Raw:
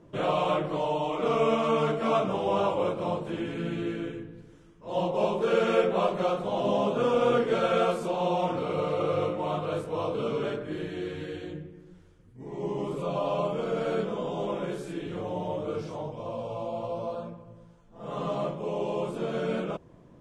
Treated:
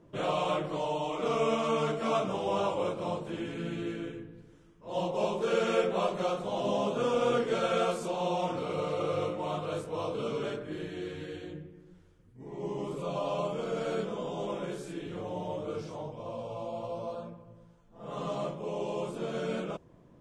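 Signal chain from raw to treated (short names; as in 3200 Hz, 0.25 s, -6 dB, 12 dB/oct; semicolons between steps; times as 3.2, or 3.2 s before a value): dynamic EQ 6900 Hz, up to +8 dB, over -55 dBFS, Q 0.75; gain -4 dB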